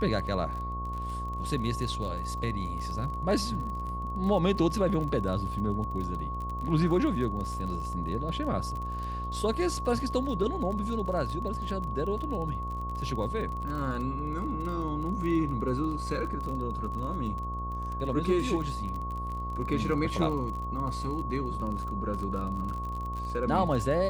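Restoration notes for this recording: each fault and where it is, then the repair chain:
buzz 60 Hz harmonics 16 -36 dBFS
crackle 34 per s -35 dBFS
whine 1.1 kHz -35 dBFS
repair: de-click; de-hum 60 Hz, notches 16; band-stop 1.1 kHz, Q 30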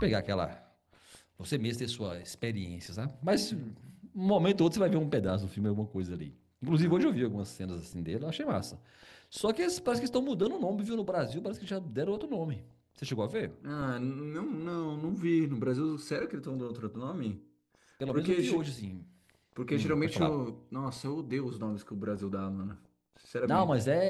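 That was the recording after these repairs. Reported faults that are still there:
nothing left

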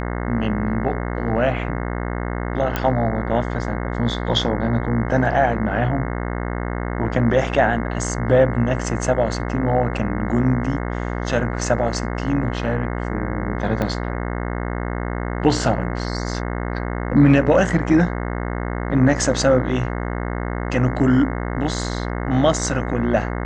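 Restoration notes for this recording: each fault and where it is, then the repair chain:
buzz 60 Hz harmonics 36 -25 dBFS
2.76 s: pop -7 dBFS
13.82 s: pop -10 dBFS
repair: de-click; de-hum 60 Hz, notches 36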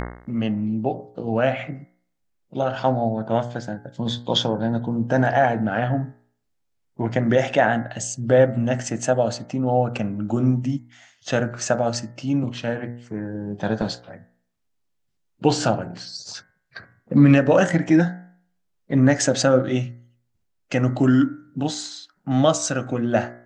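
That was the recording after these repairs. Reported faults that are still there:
13.82 s: pop

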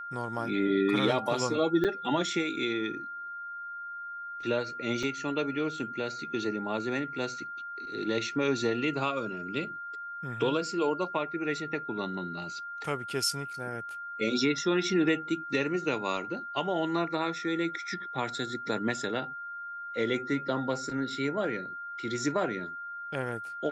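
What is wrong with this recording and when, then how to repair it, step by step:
whine 1.4 kHz -37 dBFS
1.84–1.85 s: dropout 7.2 ms
5.03 s: dropout 2.6 ms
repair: band-stop 1.4 kHz, Q 30; interpolate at 1.84 s, 7.2 ms; interpolate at 5.03 s, 2.6 ms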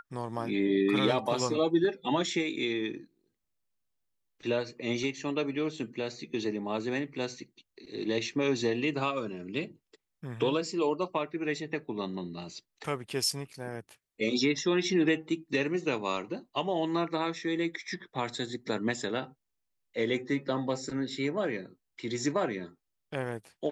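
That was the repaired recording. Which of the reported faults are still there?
nothing left

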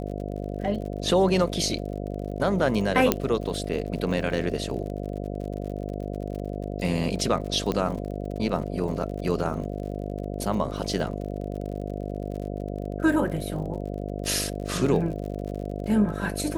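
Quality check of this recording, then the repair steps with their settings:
buzz 50 Hz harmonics 14 -32 dBFS
crackle 50 per s -35 dBFS
3.12 s: pop -4 dBFS
7.72 s: pop -14 dBFS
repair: de-click; de-hum 50 Hz, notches 14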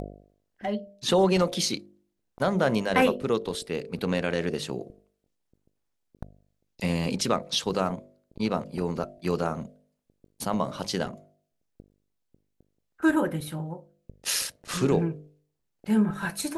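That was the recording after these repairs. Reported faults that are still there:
nothing left

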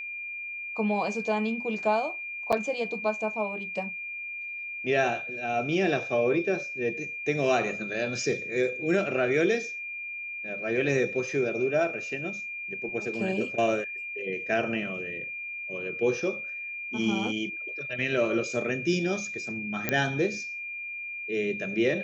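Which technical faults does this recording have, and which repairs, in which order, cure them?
whine 2.4 kHz -34 dBFS
2.52–2.53 s: dropout 6.5 ms
19.89 s: pop -10 dBFS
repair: de-click; band-stop 2.4 kHz, Q 30; interpolate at 2.52 s, 6.5 ms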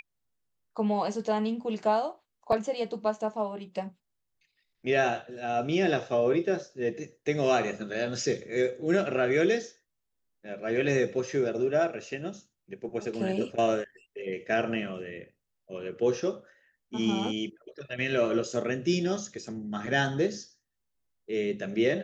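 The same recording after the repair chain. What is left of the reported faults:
nothing left

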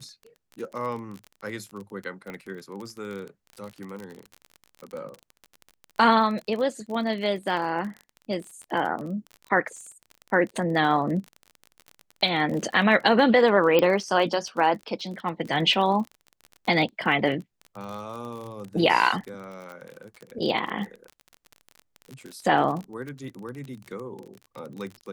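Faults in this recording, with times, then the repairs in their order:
crackle 32 per s -32 dBFS
2.30 s: pop -24 dBFS
13.79 s: pop -9 dBFS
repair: de-click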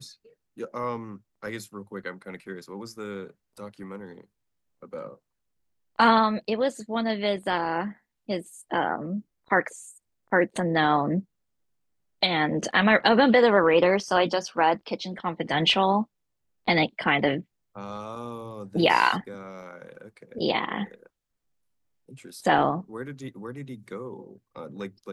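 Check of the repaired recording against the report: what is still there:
2.30 s: pop

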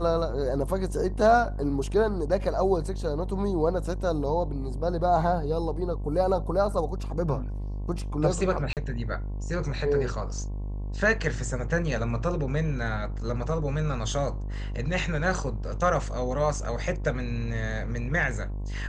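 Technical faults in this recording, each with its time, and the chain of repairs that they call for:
buzz 50 Hz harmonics 22 -32 dBFS
8.73–8.77 s: dropout 38 ms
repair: de-hum 50 Hz, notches 22; interpolate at 8.73 s, 38 ms

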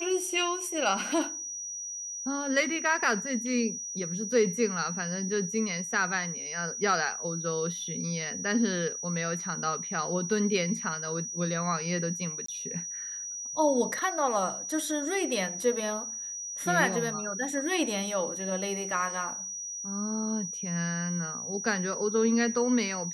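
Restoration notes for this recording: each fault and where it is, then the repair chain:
whine 5.8 kHz -35 dBFS
12.46–12.48 s: dropout 24 ms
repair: band-stop 5.8 kHz, Q 30; interpolate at 12.46 s, 24 ms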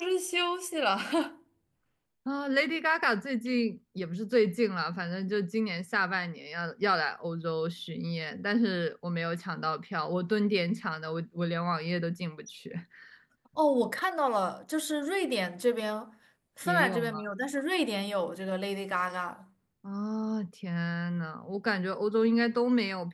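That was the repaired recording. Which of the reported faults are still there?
nothing left

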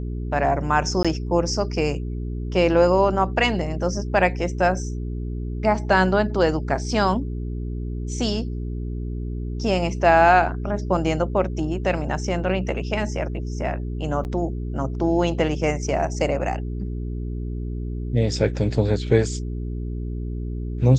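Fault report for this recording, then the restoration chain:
hum 60 Hz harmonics 7 -28 dBFS
1.03–1.05 s: dropout 16 ms
14.24–14.25 s: dropout 9.1 ms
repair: de-hum 60 Hz, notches 7; interpolate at 1.03 s, 16 ms; interpolate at 14.24 s, 9.1 ms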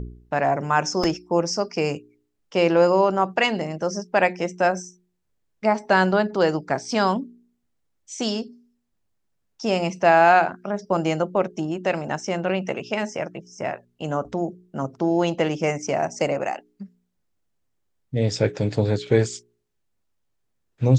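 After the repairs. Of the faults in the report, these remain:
nothing left

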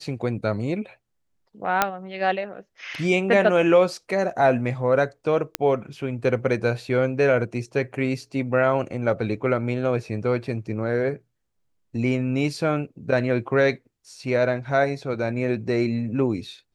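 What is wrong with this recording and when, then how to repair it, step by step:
1.82 s: pop -3 dBFS
5.55 s: pop -6 dBFS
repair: de-click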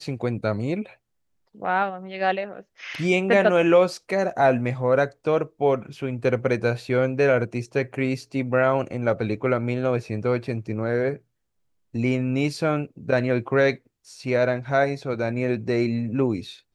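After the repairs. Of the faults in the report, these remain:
nothing left

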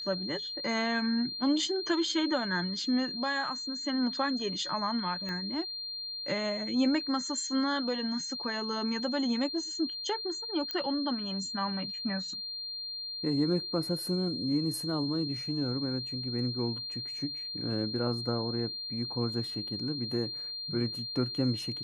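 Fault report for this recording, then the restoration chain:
whine 4.2 kHz -36 dBFS
5.29 s: pop -25 dBFS
10.71 s: pop -20 dBFS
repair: de-click; band-stop 4.2 kHz, Q 30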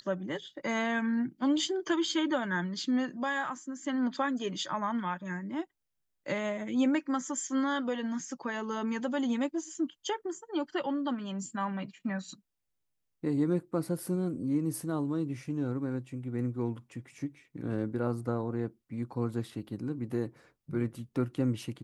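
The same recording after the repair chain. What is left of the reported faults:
5.29 s: pop

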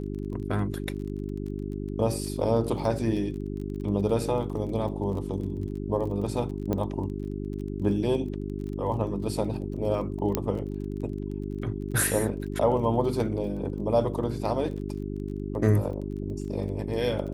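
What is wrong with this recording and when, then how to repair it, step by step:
crackle 27 per s -37 dBFS
hum 50 Hz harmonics 8 -33 dBFS
6.73 s: pop -16 dBFS
10.35 s: pop -9 dBFS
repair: de-click; de-hum 50 Hz, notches 8

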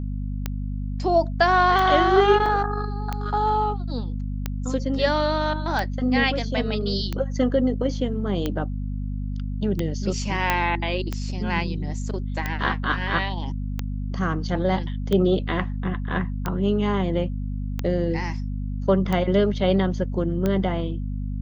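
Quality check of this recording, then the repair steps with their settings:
hum 50 Hz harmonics 5 -28 dBFS
tick 45 rpm -12 dBFS
2.46 s: dropout 3.5 ms
10.50 s: pop -6 dBFS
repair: de-click; de-hum 50 Hz, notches 5; interpolate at 2.46 s, 3.5 ms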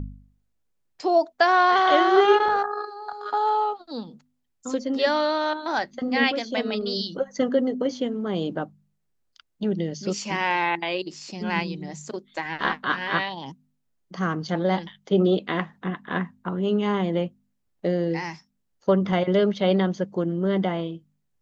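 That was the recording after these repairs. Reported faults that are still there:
10.50 s: pop

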